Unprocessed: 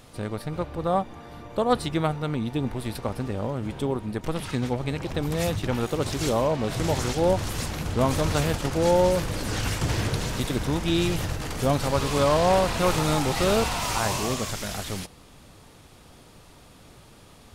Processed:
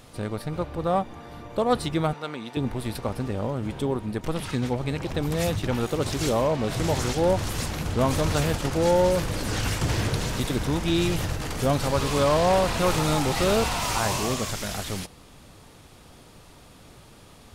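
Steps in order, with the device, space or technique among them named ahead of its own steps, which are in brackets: parallel distortion (in parallel at -6.5 dB: hard clipper -20.5 dBFS, distortion -11 dB); 2.13–2.57 s: on the sum: frequency weighting A; trim -2.5 dB

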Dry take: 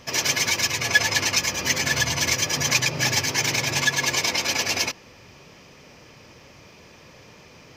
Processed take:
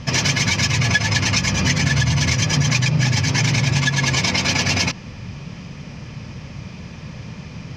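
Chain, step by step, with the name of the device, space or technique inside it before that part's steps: jukebox (low-pass 6.2 kHz 12 dB/octave; resonant low shelf 260 Hz +11 dB, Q 1.5; compression, threshold -22 dBFS, peak gain reduction 9.5 dB); trim +7.5 dB

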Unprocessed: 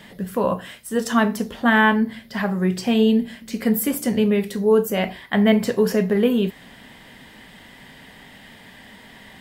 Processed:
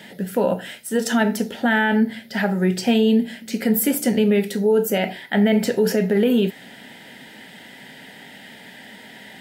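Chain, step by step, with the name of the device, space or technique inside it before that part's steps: PA system with an anti-feedback notch (high-pass 170 Hz 12 dB/octave; Butterworth band-stop 1.1 kHz, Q 3.5; peak limiter -13 dBFS, peak gain reduction 7 dB); trim +3.5 dB

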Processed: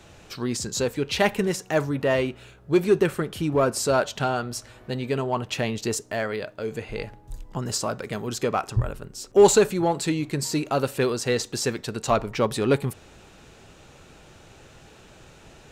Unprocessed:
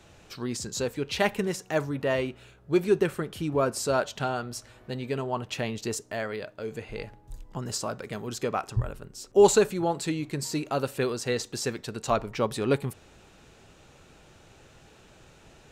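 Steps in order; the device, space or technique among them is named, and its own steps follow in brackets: parallel distortion (in parallel at -8.5 dB: hard clipper -24 dBFS, distortion -6 dB); on the sum: trim +2 dB

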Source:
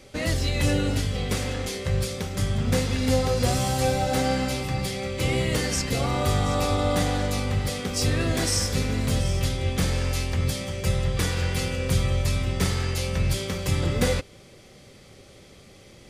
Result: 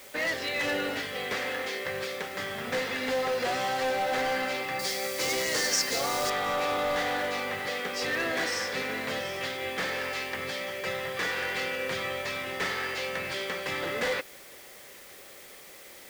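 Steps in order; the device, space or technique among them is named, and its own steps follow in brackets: drive-through speaker (band-pass 470–3500 Hz; peaking EQ 1.8 kHz +7 dB 0.48 oct; hard clipper -26 dBFS, distortion -13 dB; white noise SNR 19 dB); 4.79–6.30 s: resonant high shelf 4 kHz +10.5 dB, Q 1.5; trim +1 dB

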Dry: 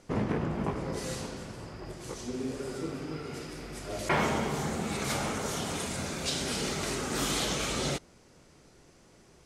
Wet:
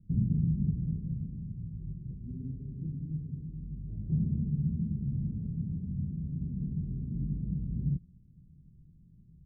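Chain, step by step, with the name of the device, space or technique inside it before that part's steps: the neighbour's flat through the wall (low-pass 170 Hz 24 dB/octave; peaking EQ 170 Hz +4.5 dB 0.63 oct); trim +5.5 dB

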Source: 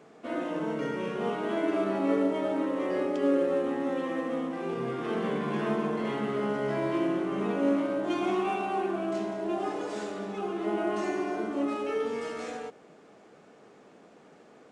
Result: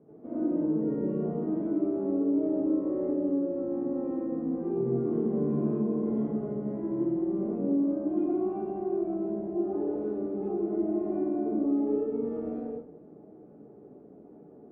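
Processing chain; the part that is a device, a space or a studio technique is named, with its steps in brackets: television next door (compression 4:1, threshold -30 dBFS, peak gain reduction 8.5 dB; low-pass 320 Hz 12 dB/octave; reverberation RT60 0.45 s, pre-delay 66 ms, DRR -7.5 dB); trim +1 dB

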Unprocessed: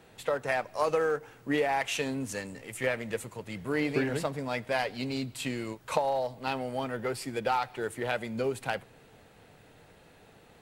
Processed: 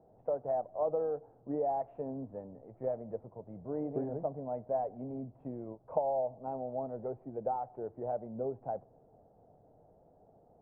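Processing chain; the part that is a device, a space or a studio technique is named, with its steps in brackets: under water (low-pass 790 Hz 24 dB/octave; peaking EQ 680 Hz +9 dB 0.58 oct); trim -7.5 dB

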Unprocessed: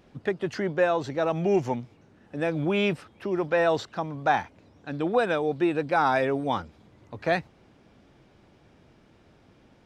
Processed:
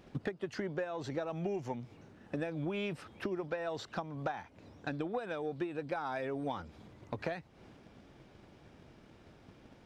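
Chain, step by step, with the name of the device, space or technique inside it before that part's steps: drum-bus smash (transient shaper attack +8 dB, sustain +3 dB; compression 16:1, threshold -31 dBFS, peak gain reduction 20 dB; saturation -21.5 dBFS, distortion -22 dB); trim -1.5 dB

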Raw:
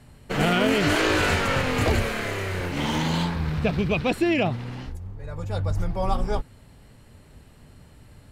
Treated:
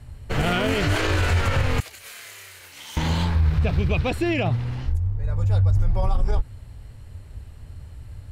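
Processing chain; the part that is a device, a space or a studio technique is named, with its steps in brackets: car stereo with a boomy subwoofer (resonant low shelf 130 Hz +11 dB, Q 1.5; peak limiter -12.5 dBFS, peak gain reduction 10.5 dB); 1.80–2.97 s: differentiator

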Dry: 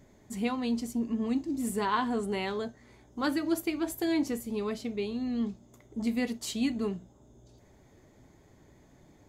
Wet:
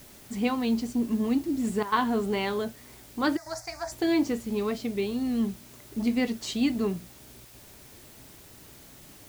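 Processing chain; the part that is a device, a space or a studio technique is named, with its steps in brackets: worn cassette (low-pass 6.2 kHz; wow and flutter; level dips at 1.83/3.37/7.45 s, 90 ms -11 dB; white noise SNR 23 dB); 3.37–3.92 s: FFT filter 110 Hz 0 dB, 260 Hz -25 dB, 410 Hz -24 dB, 700 Hz +5 dB, 1.2 kHz -2 dB, 1.9 kHz +2 dB, 3 kHz -19 dB, 5.1 kHz +9 dB, 12 kHz -5 dB; trim +4 dB

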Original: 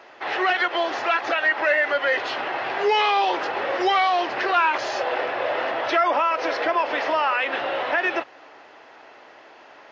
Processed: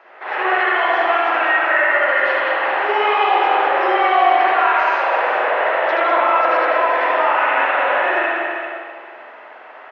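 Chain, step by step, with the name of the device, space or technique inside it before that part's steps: high-pass 760 Hz 6 dB/octave; DJ mixer with the lows and highs turned down (three-band isolator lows -19 dB, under 290 Hz, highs -18 dB, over 2.5 kHz; peak limiter -19 dBFS, peak gain reduction 6 dB); tone controls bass +9 dB, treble 0 dB; multi-tap echo 75/201/391/468 ms -5/-5.5/-10/-12.5 dB; spring tank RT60 1.7 s, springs 45/53 ms, chirp 35 ms, DRR -7 dB; trim +1.5 dB

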